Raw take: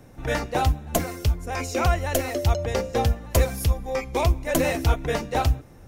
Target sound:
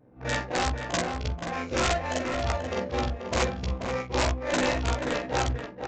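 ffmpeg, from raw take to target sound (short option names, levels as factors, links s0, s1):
-filter_complex "[0:a]afftfilt=real='re':imag='-im':win_size=4096:overlap=0.75,highpass=f=220:p=1,bandreject=f=420.4:t=h:w=4,bandreject=f=840.8:t=h:w=4,bandreject=f=1261.2:t=h:w=4,bandreject=f=1681.6:t=h:w=4,bandreject=f=2102:t=h:w=4,bandreject=f=2522.4:t=h:w=4,bandreject=f=2942.8:t=h:w=4,bandreject=f=3363.2:t=h:w=4,bandreject=f=3783.6:t=h:w=4,bandreject=f=4204:t=h:w=4,bandreject=f=4624.4:t=h:w=4,bandreject=f=5044.8:t=h:w=4,bandreject=f=5465.2:t=h:w=4,bandreject=f=5885.6:t=h:w=4,bandreject=f=6306:t=h:w=4,bandreject=f=6726.4:t=h:w=4,bandreject=f=7146.8:t=h:w=4,bandreject=f=7567.2:t=h:w=4,bandreject=f=7987.6:t=h:w=4,bandreject=f=8408:t=h:w=4,bandreject=f=8828.4:t=h:w=4,bandreject=f=9248.8:t=h:w=4,bandreject=f=9669.2:t=h:w=4,bandreject=f=10089.6:t=h:w=4,bandreject=f=10510:t=h:w=4,aeval=exprs='0.168*(cos(1*acos(clip(val(0)/0.168,-1,1)))-cos(1*PI/2))+0.00668*(cos(2*acos(clip(val(0)/0.168,-1,1)))-cos(2*PI/2))+0.00188*(cos(6*acos(clip(val(0)/0.168,-1,1)))-cos(6*PI/2))+0.00188*(cos(7*acos(clip(val(0)/0.168,-1,1)))-cos(7*PI/2))+0.00168*(cos(8*acos(clip(val(0)/0.168,-1,1)))-cos(8*PI/2))':c=same,adynamicequalizer=threshold=0.0126:dfrequency=610:dqfactor=0.87:tfrequency=610:tqfactor=0.87:attack=5:release=100:ratio=0.375:range=2:mode=cutabove:tftype=bell,asplit=2[s0][s1];[s1]aeval=exprs='sgn(val(0))*max(abs(val(0))-0.00841,0)':c=same,volume=0.631[s2];[s0][s2]amix=inputs=2:normalize=0,adynamicsmooth=sensitivity=5.5:basefreq=980,aresample=16000,aeval=exprs='(mod(7.5*val(0)+1,2)-1)/7.5':c=same,aresample=44100,asplit=2[s3][s4];[s4]adelay=16,volume=0.631[s5];[s3][s5]amix=inputs=2:normalize=0,asplit=2[s6][s7];[s7]adelay=484,volume=0.501,highshelf=f=4000:g=-10.9[s8];[s6][s8]amix=inputs=2:normalize=0,volume=0.891"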